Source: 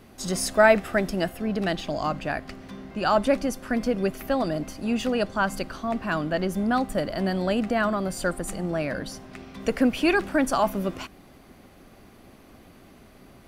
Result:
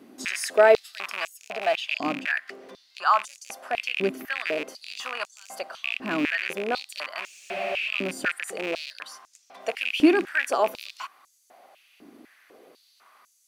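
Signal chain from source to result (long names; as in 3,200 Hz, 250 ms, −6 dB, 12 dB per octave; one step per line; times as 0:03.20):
loose part that buzzes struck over −32 dBFS, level −17 dBFS
frozen spectrum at 0:07.25, 0.63 s
high-pass on a step sequencer 4 Hz 280–6,700 Hz
level −4 dB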